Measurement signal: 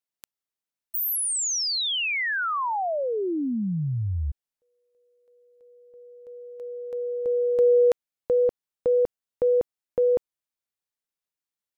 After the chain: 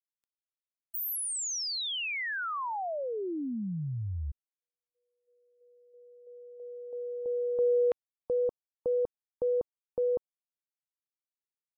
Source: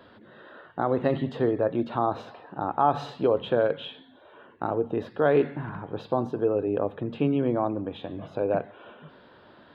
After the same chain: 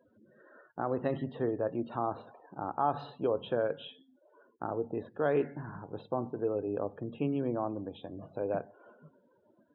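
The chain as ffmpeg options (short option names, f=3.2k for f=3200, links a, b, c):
-af "afftdn=nr=29:nf=-45,volume=-7.5dB"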